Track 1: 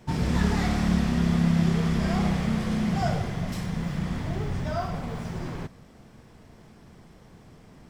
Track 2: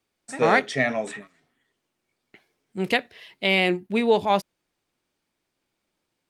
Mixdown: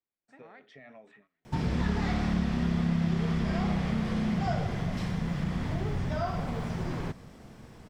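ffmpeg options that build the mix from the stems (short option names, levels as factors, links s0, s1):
-filter_complex "[0:a]acrossover=split=5400[s0][s1];[s1]acompressor=threshold=0.00112:ratio=4:attack=1:release=60[s2];[s0][s2]amix=inputs=2:normalize=0,adelay=1450,volume=1.19[s3];[1:a]lowpass=3000,alimiter=limit=0.133:level=0:latency=1:release=19,acompressor=threshold=0.0447:ratio=6,volume=0.1[s4];[s3][s4]amix=inputs=2:normalize=0,acompressor=threshold=0.0355:ratio=2"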